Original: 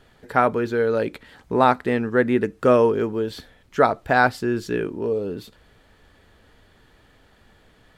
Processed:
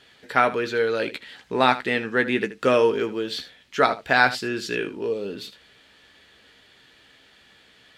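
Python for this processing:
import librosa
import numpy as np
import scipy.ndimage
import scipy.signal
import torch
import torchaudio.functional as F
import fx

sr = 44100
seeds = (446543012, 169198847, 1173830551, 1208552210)

p1 = fx.weighting(x, sr, curve='D')
p2 = p1 + fx.room_early_taps(p1, sr, ms=(15, 78), db=(-9.0, -15.0), dry=0)
y = F.gain(torch.from_numpy(p2), -3.0).numpy()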